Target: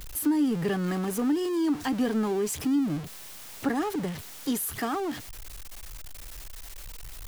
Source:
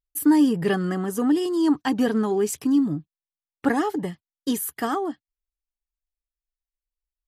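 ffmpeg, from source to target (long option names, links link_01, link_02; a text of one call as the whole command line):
ffmpeg -i in.wav -filter_complex "[0:a]aeval=exprs='val(0)+0.5*0.0447*sgn(val(0))':channel_layout=same,acrossover=split=250[link_01][link_02];[link_02]acompressor=threshold=-20dB:ratio=6[link_03];[link_01][link_03]amix=inputs=2:normalize=0,volume=-5.5dB" out.wav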